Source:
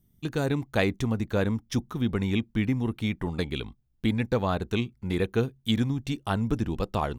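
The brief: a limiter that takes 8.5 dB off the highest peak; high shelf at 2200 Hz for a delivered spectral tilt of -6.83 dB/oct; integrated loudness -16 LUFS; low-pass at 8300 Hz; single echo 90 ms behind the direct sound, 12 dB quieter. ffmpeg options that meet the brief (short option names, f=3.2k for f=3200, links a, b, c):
-af "lowpass=8.3k,highshelf=f=2.2k:g=-6,alimiter=limit=-19dB:level=0:latency=1,aecho=1:1:90:0.251,volume=15dB"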